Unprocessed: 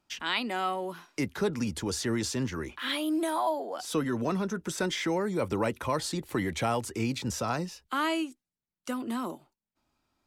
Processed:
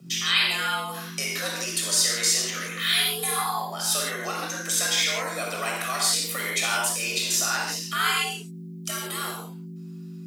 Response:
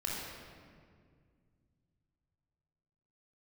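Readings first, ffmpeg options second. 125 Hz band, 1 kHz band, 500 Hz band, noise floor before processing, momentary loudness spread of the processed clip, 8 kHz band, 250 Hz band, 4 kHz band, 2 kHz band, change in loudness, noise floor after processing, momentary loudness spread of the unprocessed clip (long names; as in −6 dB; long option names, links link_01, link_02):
−2.0 dB, +3.0 dB, −3.0 dB, below −85 dBFS, 12 LU, +15.5 dB, −7.5 dB, +13.0 dB, +9.5 dB, +7.0 dB, −39 dBFS, 6 LU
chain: -filter_complex "[0:a]highpass=frequency=1300:poles=1,aeval=exprs='val(0)+0.00316*(sin(2*PI*50*n/s)+sin(2*PI*2*50*n/s)/2+sin(2*PI*3*50*n/s)/3+sin(2*PI*4*50*n/s)/4+sin(2*PI*5*50*n/s)/5)':channel_layout=same,asplit=2[link_01][link_02];[link_02]acompressor=threshold=-48dB:ratio=6,volume=0.5dB[link_03];[link_01][link_03]amix=inputs=2:normalize=0,highshelf=frequency=4100:gain=-6.5,crystalizer=i=7.5:c=0,afreqshift=120[link_04];[1:a]atrim=start_sample=2205,afade=type=out:start_time=0.23:duration=0.01,atrim=end_sample=10584[link_05];[link_04][link_05]afir=irnorm=-1:irlink=0"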